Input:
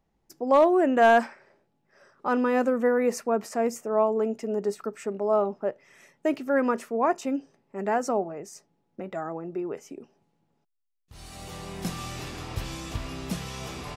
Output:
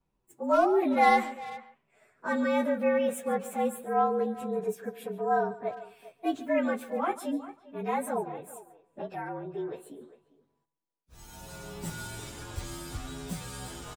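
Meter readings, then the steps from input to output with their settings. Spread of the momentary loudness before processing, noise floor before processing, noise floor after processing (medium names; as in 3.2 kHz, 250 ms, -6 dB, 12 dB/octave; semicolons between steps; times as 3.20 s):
19 LU, -73 dBFS, -78 dBFS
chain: frequency axis rescaled in octaves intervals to 113%; on a send: delay 142 ms -17 dB; on the sum: time-frequency box 8.60–9.10 s, 410–2000 Hz +8 dB; speakerphone echo 400 ms, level -16 dB; dynamic bell 8.2 kHz, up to +6 dB, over -59 dBFS, Q 1.6; trim -2 dB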